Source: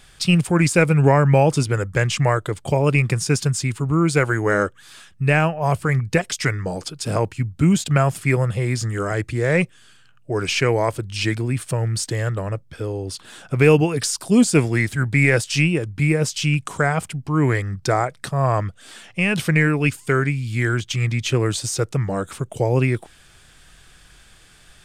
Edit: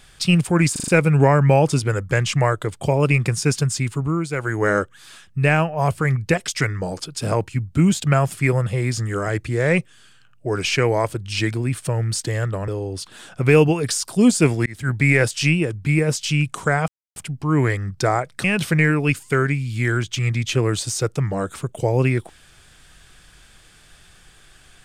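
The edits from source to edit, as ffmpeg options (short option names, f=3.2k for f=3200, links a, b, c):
-filter_complex "[0:a]asplit=11[a][b][c][d][e][f][g][h][i][j][k];[a]atrim=end=0.762[l];[b]atrim=start=0.718:end=0.762[m];[c]atrim=start=0.718:end=0.762[n];[d]atrim=start=0.718:end=0.762[o];[e]atrim=start=0.718:end=4.13,asetpts=PTS-STARTPTS,afade=t=out:st=3.092:d=0.32:silence=0.334965[p];[f]atrim=start=4.13:end=4.15,asetpts=PTS-STARTPTS,volume=-9.5dB[q];[g]atrim=start=4.15:end=12.522,asetpts=PTS-STARTPTS,afade=t=in:d=0.32:silence=0.334965[r];[h]atrim=start=12.808:end=14.79,asetpts=PTS-STARTPTS,afade=t=out:st=1.978:d=0.004:c=hsin[s];[i]atrim=start=14.79:end=17.01,asetpts=PTS-STARTPTS,afade=t=in:d=0.25,afade=t=out:st=2.216:d=0.004:c=hsin,apad=pad_dur=0.28[t];[j]atrim=start=17.01:end=18.292,asetpts=PTS-STARTPTS,afade=t=in:d=0.004:c=hsin[u];[k]atrim=start=19.208[v];[l][m]acrossfade=d=0.004:c1=hsin:c2=hsin[w];[w][n]acrossfade=d=0.004:c1=hsin:c2=hsin[x];[x][o]acrossfade=d=0.004:c1=hsin:c2=hsin[y];[p][q][r]concat=n=3:v=0:a=1[z];[y][z]acrossfade=d=0.004:c1=hsin:c2=hsin[aa];[s][t][u]concat=n=3:v=0:a=1[ab];[aa][ab]acrossfade=d=0.004:c1=hsin:c2=hsin[ac];[ac][v]acrossfade=d=0.004:c1=hsin:c2=hsin"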